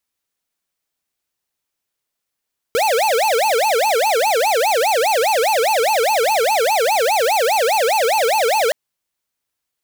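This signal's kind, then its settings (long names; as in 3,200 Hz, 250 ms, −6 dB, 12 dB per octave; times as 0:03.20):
siren wail 441–890 Hz 4.9 per second square −16 dBFS 5.97 s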